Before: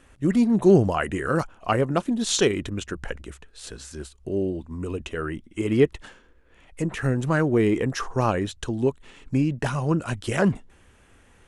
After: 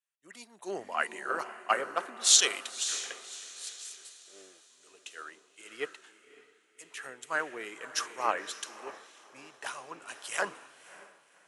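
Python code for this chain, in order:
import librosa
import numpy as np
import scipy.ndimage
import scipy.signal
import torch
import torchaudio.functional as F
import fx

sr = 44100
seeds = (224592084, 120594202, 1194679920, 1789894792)

y = scipy.signal.sosfilt(scipy.signal.butter(2, 740.0, 'highpass', fs=sr, output='sos'), x)
y = fx.tilt_eq(y, sr, slope=2.0)
y = fx.echo_diffused(y, sr, ms=565, feedback_pct=62, wet_db=-8.0)
y = fx.band_widen(y, sr, depth_pct=100)
y = y * librosa.db_to_amplitude(-8.5)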